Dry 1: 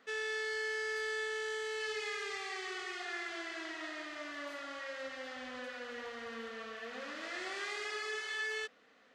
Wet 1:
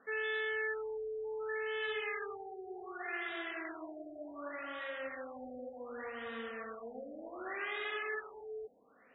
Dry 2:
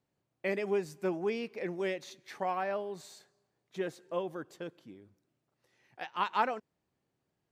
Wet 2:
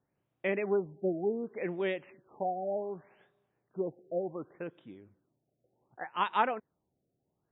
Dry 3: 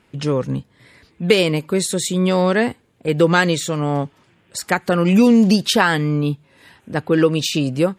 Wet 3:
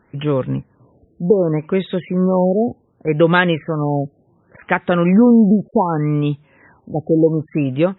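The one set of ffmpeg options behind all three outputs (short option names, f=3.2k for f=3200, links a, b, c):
-af "afftfilt=real='re*lt(b*sr/1024,750*pow(3900/750,0.5+0.5*sin(2*PI*0.67*pts/sr)))':imag='im*lt(b*sr/1024,750*pow(3900/750,0.5+0.5*sin(2*PI*0.67*pts/sr)))':win_size=1024:overlap=0.75,volume=1.5dB"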